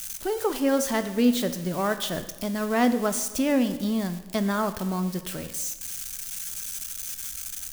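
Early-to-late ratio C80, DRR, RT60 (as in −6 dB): 13.5 dB, 9.5 dB, 1.1 s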